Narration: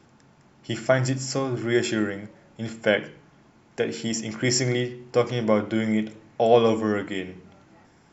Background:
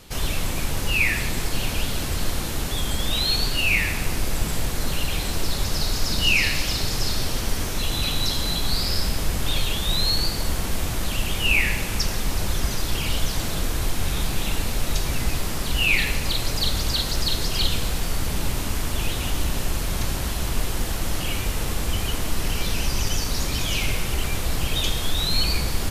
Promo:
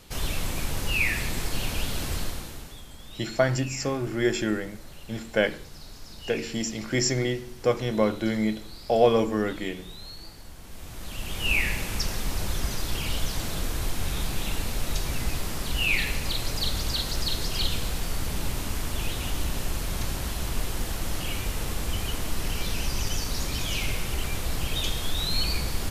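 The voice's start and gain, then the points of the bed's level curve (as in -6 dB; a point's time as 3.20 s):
2.50 s, -2.0 dB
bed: 2.16 s -4 dB
2.88 s -20.5 dB
10.56 s -20.5 dB
11.51 s -4.5 dB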